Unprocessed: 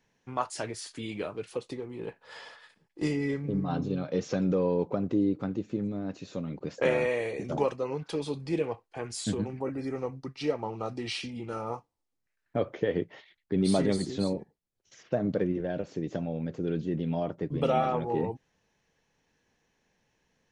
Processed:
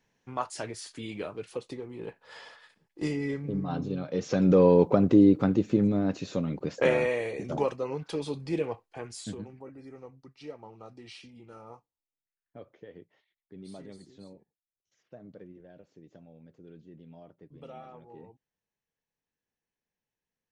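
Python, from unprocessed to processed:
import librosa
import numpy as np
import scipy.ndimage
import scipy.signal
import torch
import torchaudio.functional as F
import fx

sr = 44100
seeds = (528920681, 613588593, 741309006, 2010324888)

y = fx.gain(x, sr, db=fx.line((4.14, -1.5), (4.6, 8.0), (5.99, 8.0), (7.23, -0.5), (8.84, -0.5), (9.68, -13.0), (11.75, -13.0), (12.9, -20.0)))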